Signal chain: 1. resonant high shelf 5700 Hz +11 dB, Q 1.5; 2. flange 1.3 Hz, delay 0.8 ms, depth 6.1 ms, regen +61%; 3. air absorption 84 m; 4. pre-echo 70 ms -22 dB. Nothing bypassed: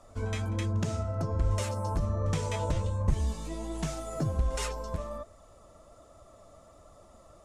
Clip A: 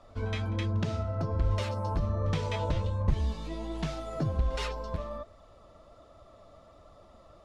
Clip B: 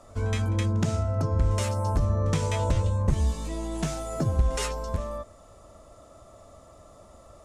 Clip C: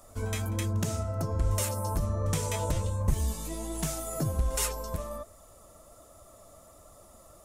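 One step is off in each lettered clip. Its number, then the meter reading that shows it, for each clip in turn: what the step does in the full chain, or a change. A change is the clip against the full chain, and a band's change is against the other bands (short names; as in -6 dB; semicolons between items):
1, 8 kHz band -10.0 dB; 2, loudness change +5.0 LU; 3, 8 kHz band +8.0 dB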